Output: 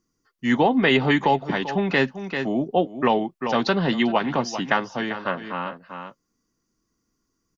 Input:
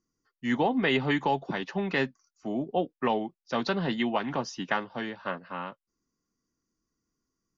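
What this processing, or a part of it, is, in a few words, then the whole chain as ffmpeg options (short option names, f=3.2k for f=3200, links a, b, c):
ducked delay: -filter_complex "[0:a]asplit=3[a][b][c];[b]adelay=392,volume=-7dB[d];[c]apad=whole_len=351127[e];[d][e]sidechaincompress=threshold=-38dB:ratio=10:attack=16:release=194[f];[a][f]amix=inputs=2:normalize=0,volume=7dB"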